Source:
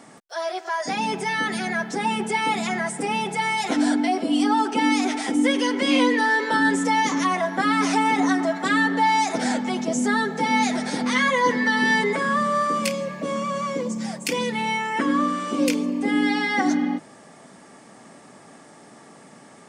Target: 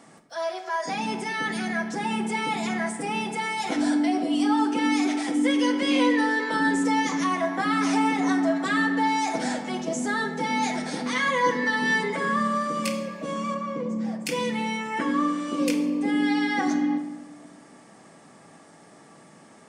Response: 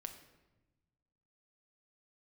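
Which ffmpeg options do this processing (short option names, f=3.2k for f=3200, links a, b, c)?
-filter_complex "[0:a]asettb=1/sr,asplit=3[a][b][c];[a]atrim=end=13.544[d];[b]atrim=start=13.54:end=14.26,asetpts=PTS-STARTPTS,afade=t=in:d=0.004:c=qsin,afade=t=out:st=0.716:d=0.004:c=qsin,lowpass=f=1.5k:p=1[e];[c]atrim=start=14.256[f];[d][e]acrossfade=d=0.004:c1=hsin:c2=qsin[g];[g][f]acrossfade=d=0.004:c1=qsin:c2=hsin[h];[1:a]atrim=start_sample=2205[i];[h][i]afir=irnorm=-1:irlink=0"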